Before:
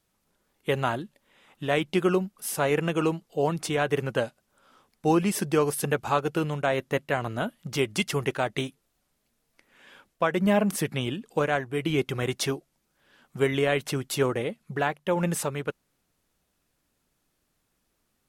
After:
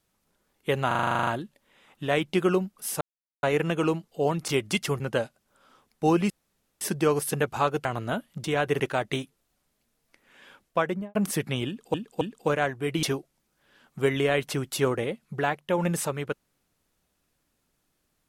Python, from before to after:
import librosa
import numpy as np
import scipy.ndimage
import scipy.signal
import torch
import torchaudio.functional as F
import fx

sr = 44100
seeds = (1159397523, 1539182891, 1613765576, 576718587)

y = fx.studio_fade_out(x, sr, start_s=10.23, length_s=0.37)
y = fx.edit(y, sr, fx.stutter(start_s=0.87, slice_s=0.04, count=11),
    fx.insert_silence(at_s=2.61, length_s=0.42),
    fx.swap(start_s=3.66, length_s=0.36, other_s=7.73, other_length_s=0.52),
    fx.insert_room_tone(at_s=5.32, length_s=0.51),
    fx.cut(start_s=6.36, length_s=0.78),
    fx.repeat(start_s=11.12, length_s=0.27, count=3),
    fx.cut(start_s=11.94, length_s=0.47), tone=tone)